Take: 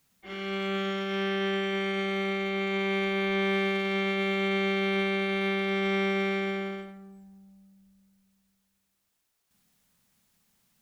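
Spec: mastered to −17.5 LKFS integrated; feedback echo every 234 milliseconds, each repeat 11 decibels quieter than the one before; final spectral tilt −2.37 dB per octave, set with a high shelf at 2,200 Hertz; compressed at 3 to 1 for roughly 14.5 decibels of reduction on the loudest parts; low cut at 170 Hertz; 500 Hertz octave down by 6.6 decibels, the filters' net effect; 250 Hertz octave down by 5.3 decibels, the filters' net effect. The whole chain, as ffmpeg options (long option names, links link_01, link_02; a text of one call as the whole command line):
ffmpeg -i in.wav -af "highpass=170,equalizer=frequency=250:width_type=o:gain=-3.5,equalizer=frequency=500:width_type=o:gain=-7.5,highshelf=frequency=2200:gain=-5.5,acompressor=threshold=-51dB:ratio=3,aecho=1:1:234|468|702:0.282|0.0789|0.0221,volume=29.5dB" out.wav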